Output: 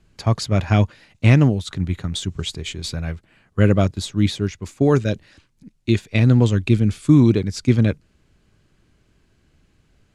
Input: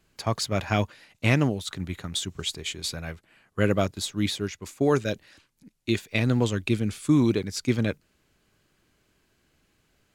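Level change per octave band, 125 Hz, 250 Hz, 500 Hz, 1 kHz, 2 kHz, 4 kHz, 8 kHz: +11.0, +7.5, +4.5, +3.0, +2.0, +1.5, 0.0 decibels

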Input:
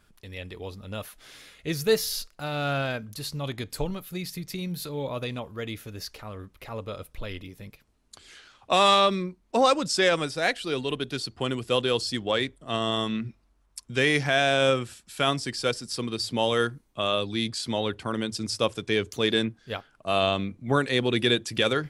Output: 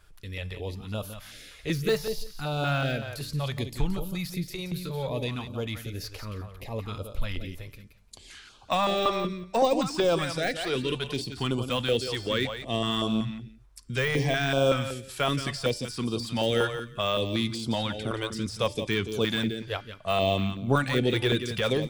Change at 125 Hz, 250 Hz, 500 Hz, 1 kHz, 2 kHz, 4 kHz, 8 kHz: +3.0, 0.0, −1.5, −3.5, −3.5, −3.5, −4.5 decibels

